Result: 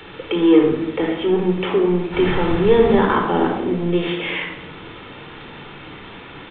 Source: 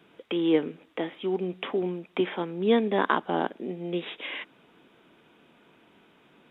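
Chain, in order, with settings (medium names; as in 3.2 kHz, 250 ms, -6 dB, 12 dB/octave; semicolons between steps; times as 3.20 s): in parallel at -7 dB: word length cut 6-bit, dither triangular; 2.12–2.97 s: on the sum: added noise pink -33 dBFS; power-law waveshaper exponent 0.7; distance through air 100 m; simulated room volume 2900 m³, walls furnished, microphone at 4.3 m; resampled via 8 kHz; trim -2 dB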